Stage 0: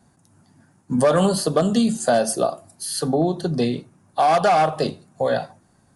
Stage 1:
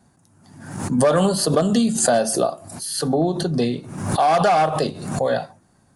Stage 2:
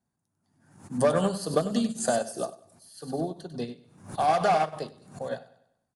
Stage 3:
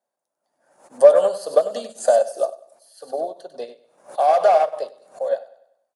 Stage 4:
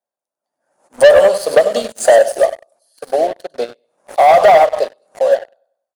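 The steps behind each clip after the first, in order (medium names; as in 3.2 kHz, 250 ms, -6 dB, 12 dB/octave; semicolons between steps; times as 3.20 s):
swell ahead of each attack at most 63 dB/s
on a send: feedback delay 97 ms, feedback 44%, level -9 dB; on the sum: upward expansion 2.5:1, over -26 dBFS; trim -4.5 dB
resonant high-pass 570 Hz, resonance Q 5.5; trim -1 dB
waveshaping leveller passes 3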